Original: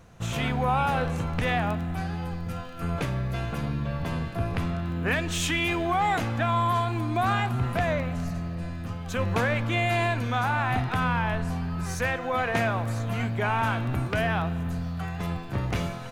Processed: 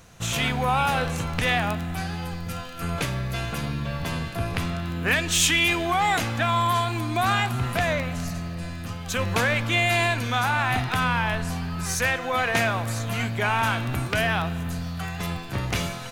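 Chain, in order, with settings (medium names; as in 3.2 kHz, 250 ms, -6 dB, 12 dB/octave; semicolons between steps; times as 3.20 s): treble shelf 2.1 kHz +11.5 dB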